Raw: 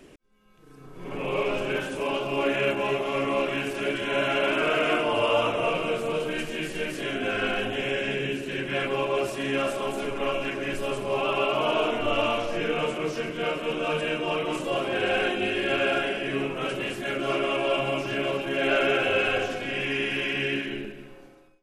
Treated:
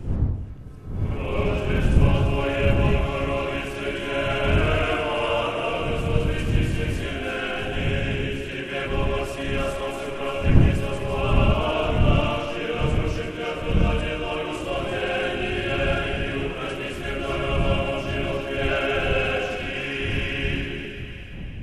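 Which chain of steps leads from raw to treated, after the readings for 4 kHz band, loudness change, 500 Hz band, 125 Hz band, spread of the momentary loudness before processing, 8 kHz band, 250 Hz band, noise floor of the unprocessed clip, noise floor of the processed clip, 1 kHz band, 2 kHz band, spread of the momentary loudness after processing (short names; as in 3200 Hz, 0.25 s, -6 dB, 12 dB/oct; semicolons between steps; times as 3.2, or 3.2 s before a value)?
0.0 dB, +2.0 dB, 0.0 dB, +15.5 dB, 7 LU, 0.0 dB, +3.0 dB, -50 dBFS, -33 dBFS, 0.0 dB, 0.0 dB, 8 LU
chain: wind noise 120 Hz -25 dBFS; split-band echo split 1400 Hz, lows 93 ms, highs 0.341 s, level -8 dB; gain -1 dB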